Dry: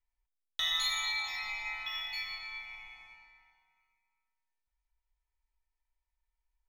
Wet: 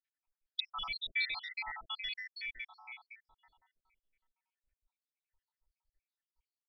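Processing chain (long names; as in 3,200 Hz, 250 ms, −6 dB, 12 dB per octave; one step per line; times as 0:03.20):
time-frequency cells dropped at random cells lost 80%
downsampling to 11,025 Hz
level +4.5 dB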